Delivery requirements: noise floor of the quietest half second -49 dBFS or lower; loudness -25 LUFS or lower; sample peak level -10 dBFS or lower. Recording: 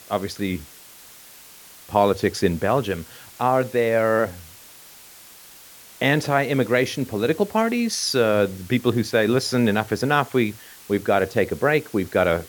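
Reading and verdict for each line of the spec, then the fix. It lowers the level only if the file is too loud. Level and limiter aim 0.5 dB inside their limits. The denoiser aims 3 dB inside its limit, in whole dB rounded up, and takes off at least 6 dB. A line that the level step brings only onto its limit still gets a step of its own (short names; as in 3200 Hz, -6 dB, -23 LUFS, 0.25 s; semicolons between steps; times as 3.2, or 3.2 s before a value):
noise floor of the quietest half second -46 dBFS: fail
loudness -21.5 LUFS: fail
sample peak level -4.0 dBFS: fail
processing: gain -4 dB; limiter -10.5 dBFS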